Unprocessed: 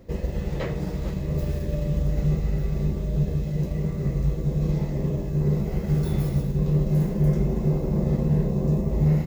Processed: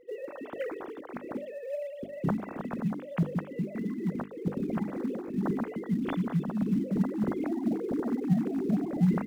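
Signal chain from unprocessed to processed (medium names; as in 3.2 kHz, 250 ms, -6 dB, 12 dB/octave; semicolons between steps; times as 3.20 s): formants replaced by sine waves; hum notches 50/100/150/200/250/300/350/400/450 Hz; in parallel at -11 dB: short-mantissa float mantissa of 2-bit; on the sum: trim -9 dB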